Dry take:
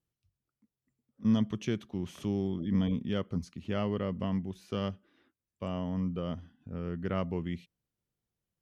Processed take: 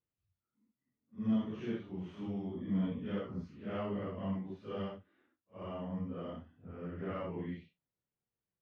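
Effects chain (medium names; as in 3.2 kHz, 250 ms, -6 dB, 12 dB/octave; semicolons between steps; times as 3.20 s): phase randomisation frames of 200 ms; low-pass 2.3 kHz 12 dB/octave; bass shelf 160 Hz -7.5 dB; in parallel at -10 dB: saturation -30.5 dBFS, distortion -10 dB; on the sum: trim -5.5 dB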